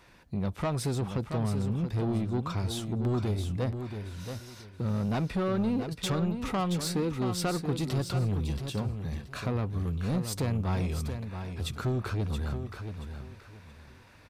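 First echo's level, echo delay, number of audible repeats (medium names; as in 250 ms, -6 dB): -8.0 dB, 677 ms, 3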